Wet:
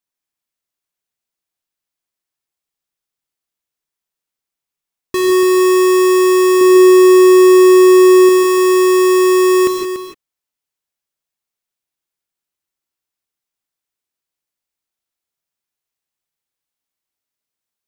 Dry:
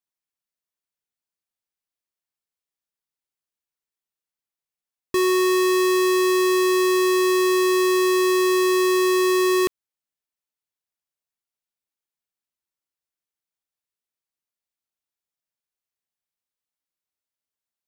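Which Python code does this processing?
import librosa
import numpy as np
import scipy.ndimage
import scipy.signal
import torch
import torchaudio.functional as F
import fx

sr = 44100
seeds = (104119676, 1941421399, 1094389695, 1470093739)

p1 = fx.low_shelf(x, sr, hz=330.0, db=10.0, at=(6.61, 8.29))
p2 = p1 + fx.echo_single(p1, sr, ms=288, db=-9.5, dry=0)
p3 = fx.rev_gated(p2, sr, seeds[0], gate_ms=190, shape='rising', drr_db=3.5)
y = p3 * 10.0 ** (4.0 / 20.0)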